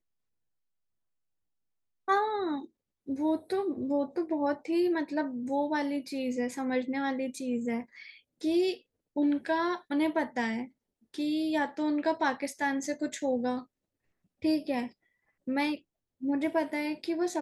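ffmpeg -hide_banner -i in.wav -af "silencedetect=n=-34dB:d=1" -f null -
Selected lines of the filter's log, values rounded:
silence_start: 0.00
silence_end: 2.08 | silence_duration: 2.08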